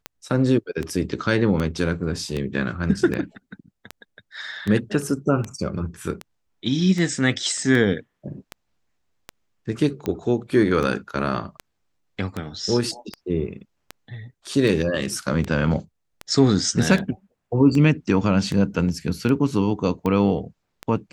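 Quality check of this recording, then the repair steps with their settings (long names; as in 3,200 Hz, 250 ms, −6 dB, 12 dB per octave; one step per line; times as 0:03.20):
scratch tick 78 rpm −14 dBFS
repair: click removal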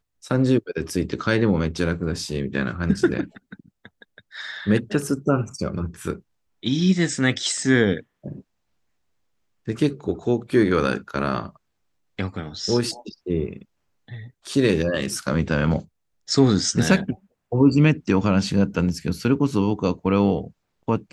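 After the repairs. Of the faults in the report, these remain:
none of them is left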